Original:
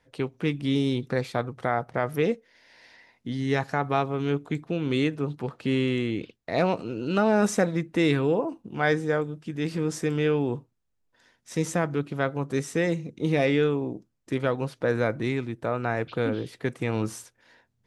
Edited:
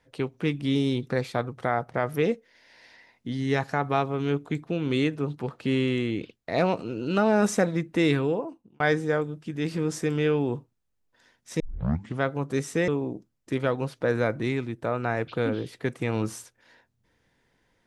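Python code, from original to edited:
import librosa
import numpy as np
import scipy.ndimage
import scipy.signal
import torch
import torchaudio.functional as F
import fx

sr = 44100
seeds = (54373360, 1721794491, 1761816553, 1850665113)

y = fx.edit(x, sr, fx.fade_out_span(start_s=8.15, length_s=0.65),
    fx.tape_start(start_s=11.6, length_s=0.61),
    fx.cut(start_s=12.88, length_s=0.8), tone=tone)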